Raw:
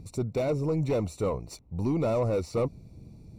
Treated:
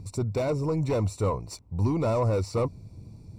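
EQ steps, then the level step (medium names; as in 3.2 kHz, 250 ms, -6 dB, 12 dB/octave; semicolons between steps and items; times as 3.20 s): graphic EQ with 31 bands 100 Hz +10 dB, 1 kHz +7 dB, 1.6 kHz +5 dB, 5 kHz +6 dB, 8 kHz +6 dB; 0.0 dB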